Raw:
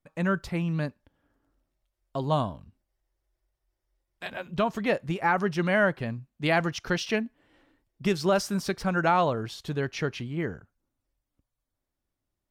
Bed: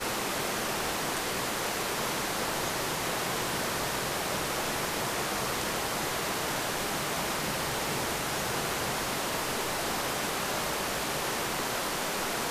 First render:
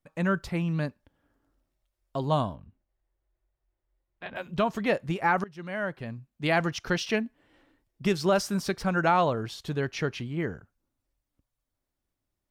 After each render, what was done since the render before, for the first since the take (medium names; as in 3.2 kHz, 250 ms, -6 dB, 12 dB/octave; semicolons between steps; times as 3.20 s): 2.55–4.36 s: distance through air 320 m; 5.44–6.64 s: fade in, from -22 dB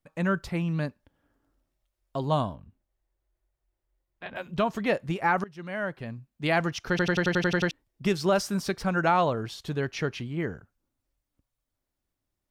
6.90 s: stutter in place 0.09 s, 9 plays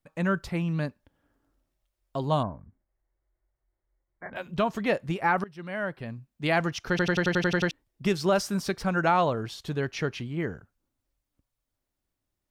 2.43–4.33 s: brick-wall FIR low-pass 2.3 kHz; 5.15–6.09 s: band-stop 6.6 kHz, Q 5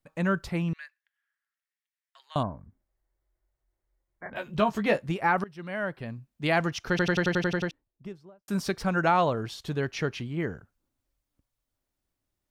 0.73–2.36 s: ladder high-pass 1.6 kHz, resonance 60%; 4.33–5.02 s: doubling 14 ms -5 dB; 7.13–8.48 s: studio fade out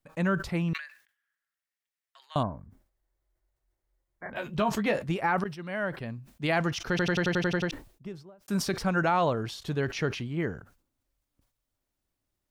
peak limiter -16 dBFS, peak gain reduction 5.5 dB; decay stretcher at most 130 dB/s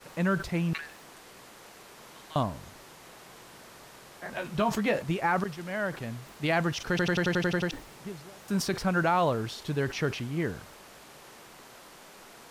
add bed -19 dB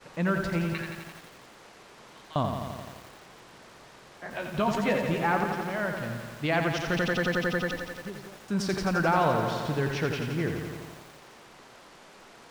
distance through air 56 m; bit-crushed delay 86 ms, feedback 80%, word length 8-bit, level -6 dB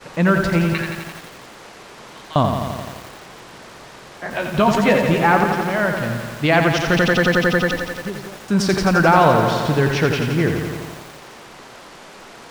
trim +11 dB